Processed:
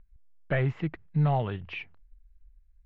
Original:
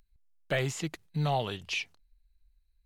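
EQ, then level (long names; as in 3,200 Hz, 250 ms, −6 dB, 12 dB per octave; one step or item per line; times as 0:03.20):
transistor ladder low-pass 2,500 Hz, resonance 25%
low-shelf EQ 190 Hz +11.5 dB
+5.0 dB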